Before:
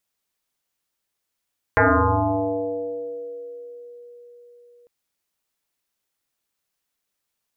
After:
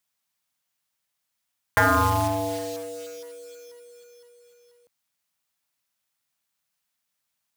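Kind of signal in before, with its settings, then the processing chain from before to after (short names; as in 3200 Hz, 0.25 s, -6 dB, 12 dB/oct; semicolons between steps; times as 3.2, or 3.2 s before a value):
FM tone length 3.10 s, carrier 481 Hz, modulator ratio 0.39, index 7.6, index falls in 2.88 s exponential, decay 4.82 s, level -12 dB
block floating point 3-bit; HPF 84 Hz; bell 390 Hz -13.5 dB 0.66 oct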